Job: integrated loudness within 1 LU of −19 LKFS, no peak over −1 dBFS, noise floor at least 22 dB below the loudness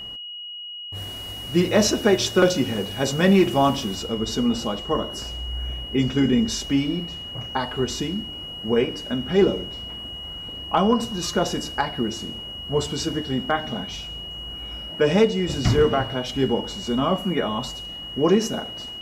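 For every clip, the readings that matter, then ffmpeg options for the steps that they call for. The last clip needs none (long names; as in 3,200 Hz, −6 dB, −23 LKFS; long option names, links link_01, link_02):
interfering tone 2,900 Hz; level of the tone −33 dBFS; integrated loudness −23.5 LKFS; sample peak −8.0 dBFS; target loudness −19.0 LKFS
→ -af "bandreject=frequency=2900:width=30"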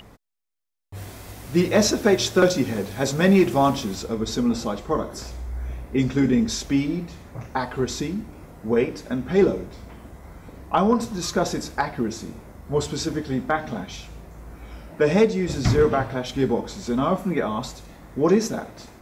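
interfering tone none found; integrated loudness −23.0 LKFS; sample peak −8.5 dBFS; target loudness −19.0 LKFS
→ -af "volume=4dB"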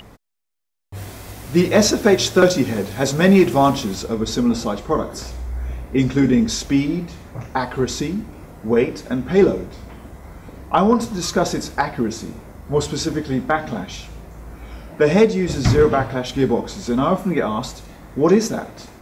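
integrated loudness −19.0 LKFS; sample peak −4.5 dBFS; background noise floor −43 dBFS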